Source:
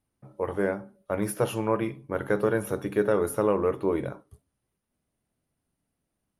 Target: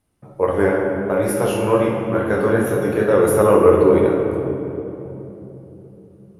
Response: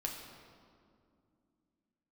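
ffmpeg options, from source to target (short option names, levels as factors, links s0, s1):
-filter_complex "[0:a]asplit=3[s0][s1][s2];[s0]afade=t=out:st=1.11:d=0.02[s3];[s1]flanger=delay=22.5:depth=6.3:speed=2.2,afade=t=in:st=1.11:d=0.02,afade=t=out:st=3.12:d=0.02[s4];[s2]afade=t=in:st=3.12:d=0.02[s5];[s3][s4][s5]amix=inputs=3:normalize=0[s6];[1:a]atrim=start_sample=2205,asetrate=26460,aresample=44100[s7];[s6][s7]afir=irnorm=-1:irlink=0,volume=2.37"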